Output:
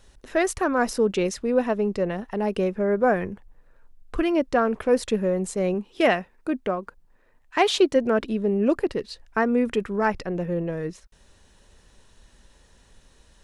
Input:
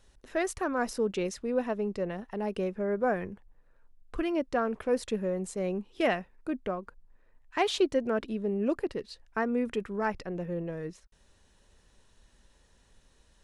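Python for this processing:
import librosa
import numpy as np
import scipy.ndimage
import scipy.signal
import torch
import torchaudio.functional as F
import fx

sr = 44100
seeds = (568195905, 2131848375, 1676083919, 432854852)

y = fx.low_shelf(x, sr, hz=94.0, db=-9.0, at=(5.74, 7.96))
y = y * 10.0 ** (7.5 / 20.0)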